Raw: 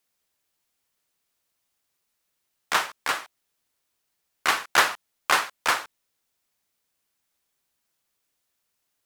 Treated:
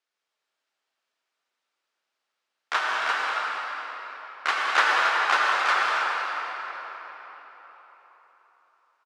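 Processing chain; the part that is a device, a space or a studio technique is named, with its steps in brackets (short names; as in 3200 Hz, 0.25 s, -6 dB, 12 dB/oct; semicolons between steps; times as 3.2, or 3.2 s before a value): station announcement (BPF 420–4600 Hz; bell 1400 Hz +4 dB 0.4 oct; loudspeakers at several distances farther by 67 m -11 dB, 93 m -10 dB; reverb RT60 4.4 s, pre-delay 72 ms, DRR -3 dB); gain -4 dB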